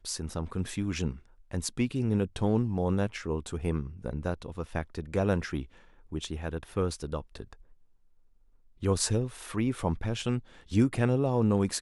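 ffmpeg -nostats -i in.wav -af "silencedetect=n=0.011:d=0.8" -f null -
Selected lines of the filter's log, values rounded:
silence_start: 7.53
silence_end: 8.82 | silence_duration: 1.29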